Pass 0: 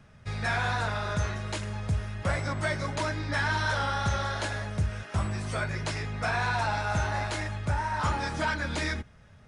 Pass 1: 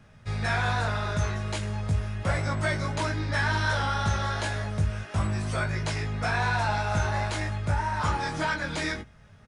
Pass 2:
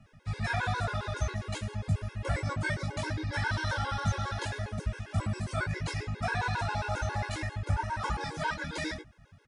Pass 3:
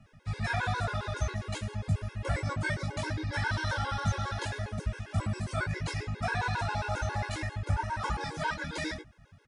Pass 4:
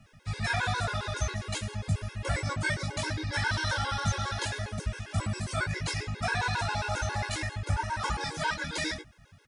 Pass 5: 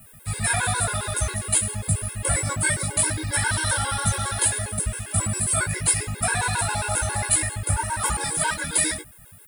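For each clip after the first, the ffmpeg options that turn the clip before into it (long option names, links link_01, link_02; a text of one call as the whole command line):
ffmpeg -i in.wav -filter_complex "[0:a]asplit=2[link_01][link_02];[link_02]adelay=19,volume=-5dB[link_03];[link_01][link_03]amix=inputs=2:normalize=0" out.wav
ffmpeg -i in.wav -af "afftfilt=real='re*gt(sin(2*PI*7.4*pts/sr)*(1-2*mod(floor(b*sr/1024/280),2)),0)':imag='im*gt(sin(2*PI*7.4*pts/sr)*(1-2*mod(floor(b*sr/1024/280),2)),0)':win_size=1024:overlap=0.75,volume=-1.5dB" out.wav
ffmpeg -i in.wav -af anull out.wav
ffmpeg -i in.wav -af "highshelf=frequency=2300:gain=8" out.wav
ffmpeg -i in.wav -af "aexciter=amount=15.6:drive=8.8:freq=9000,volume=4.5dB" out.wav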